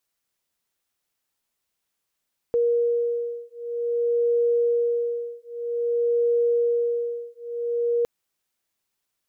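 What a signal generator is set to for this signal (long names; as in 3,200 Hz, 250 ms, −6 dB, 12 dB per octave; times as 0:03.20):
two tones that beat 473 Hz, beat 0.52 Hz, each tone −23.5 dBFS 5.51 s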